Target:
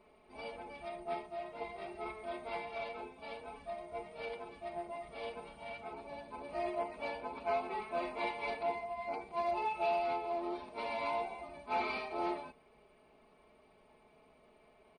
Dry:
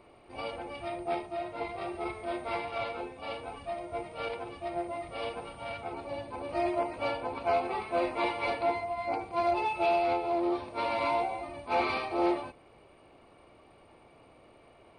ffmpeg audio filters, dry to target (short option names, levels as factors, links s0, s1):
-af "aecho=1:1:4.7:0.8,volume=0.355"